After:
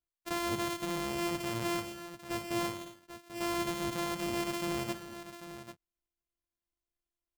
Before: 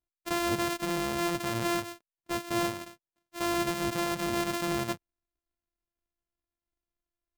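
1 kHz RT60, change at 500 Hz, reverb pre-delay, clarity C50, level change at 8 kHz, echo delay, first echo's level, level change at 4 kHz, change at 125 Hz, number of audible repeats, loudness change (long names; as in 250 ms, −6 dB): no reverb audible, −4.0 dB, no reverb audible, no reverb audible, −4.0 dB, 59 ms, −11.5 dB, −3.5 dB, −4.0 dB, 3, −4.5 dB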